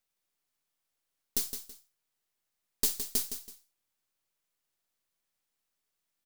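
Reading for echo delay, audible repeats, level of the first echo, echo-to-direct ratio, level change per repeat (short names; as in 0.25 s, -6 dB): 0.164 s, 2, -9.0 dB, -8.5 dB, -10.5 dB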